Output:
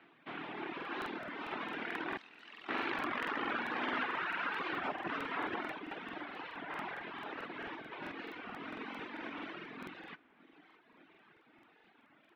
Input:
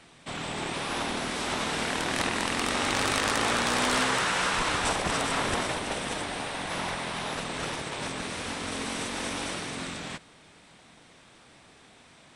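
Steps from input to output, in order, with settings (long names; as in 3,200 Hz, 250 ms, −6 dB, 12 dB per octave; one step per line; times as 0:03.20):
0:02.15–0:02.69: first difference
repeating echo 581 ms, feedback 56%, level −14.5 dB
reverb reduction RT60 1.9 s
loudspeaker in its box 240–2,800 Hz, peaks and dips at 320 Hz +7 dB, 550 Hz −6 dB, 1,500 Hz +3 dB
regular buffer underruns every 0.22 s, samples 2,048, repeat, from 0:00.76
wow of a warped record 33 1/3 rpm, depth 160 cents
level −6.5 dB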